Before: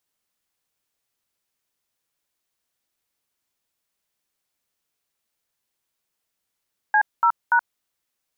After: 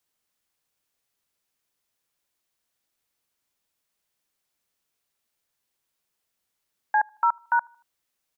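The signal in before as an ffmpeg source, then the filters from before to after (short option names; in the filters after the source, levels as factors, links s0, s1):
-f lavfi -i "aevalsrc='0.15*clip(min(mod(t,0.289),0.075-mod(t,0.289))/0.002,0,1)*(eq(floor(t/0.289),0)*(sin(2*PI*852*mod(t,0.289))+sin(2*PI*1633*mod(t,0.289)))+eq(floor(t/0.289),1)*(sin(2*PI*941*mod(t,0.289))+sin(2*PI*1336*mod(t,0.289)))+eq(floor(t/0.289),2)*(sin(2*PI*941*mod(t,0.289))+sin(2*PI*1477*mod(t,0.289))))':d=0.867:s=44100"
-filter_complex "[0:a]acrossover=split=890|1000[s0][s1][s2];[s1]aecho=1:1:77|154|231:0.106|0.0477|0.0214[s3];[s2]alimiter=level_in=1.19:limit=0.0631:level=0:latency=1:release=217,volume=0.841[s4];[s0][s3][s4]amix=inputs=3:normalize=0"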